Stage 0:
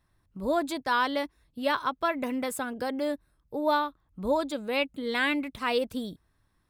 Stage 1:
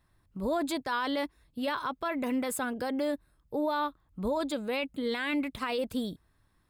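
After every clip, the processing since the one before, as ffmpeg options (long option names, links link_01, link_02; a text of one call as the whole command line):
ffmpeg -i in.wav -af "alimiter=level_in=0.5dB:limit=-24dB:level=0:latency=1:release=11,volume=-0.5dB,bandreject=frequency=5800:width=11,volume=1.5dB" out.wav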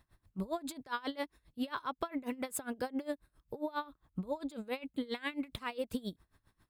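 ffmpeg -i in.wav -af "acompressor=threshold=-35dB:ratio=6,aeval=exprs='val(0)*pow(10,-22*(0.5-0.5*cos(2*PI*7.4*n/s))/20)':channel_layout=same,volume=5dB" out.wav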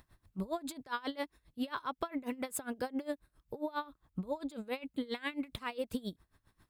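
ffmpeg -i in.wav -af "acompressor=mode=upward:threshold=-58dB:ratio=2.5" out.wav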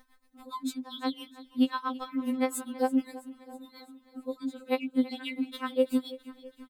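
ffmpeg -i in.wav -af "aecho=1:1:329|658|987|1316|1645:0.126|0.0755|0.0453|0.0272|0.0163,afftfilt=real='re*3.46*eq(mod(b,12),0)':imag='im*3.46*eq(mod(b,12),0)':win_size=2048:overlap=0.75,volume=6dB" out.wav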